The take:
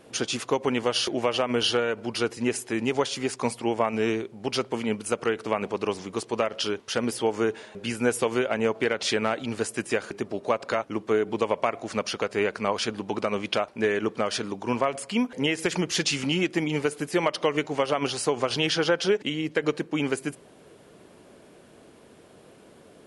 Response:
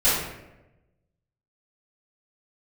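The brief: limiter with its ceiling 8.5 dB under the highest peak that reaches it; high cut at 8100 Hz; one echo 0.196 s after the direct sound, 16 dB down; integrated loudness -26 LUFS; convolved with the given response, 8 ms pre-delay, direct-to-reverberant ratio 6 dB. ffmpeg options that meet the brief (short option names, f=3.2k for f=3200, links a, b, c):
-filter_complex "[0:a]lowpass=8.1k,alimiter=limit=-18.5dB:level=0:latency=1,aecho=1:1:196:0.158,asplit=2[a][b];[1:a]atrim=start_sample=2205,adelay=8[c];[b][c]afir=irnorm=-1:irlink=0,volume=-23dB[d];[a][d]amix=inputs=2:normalize=0,volume=3.5dB"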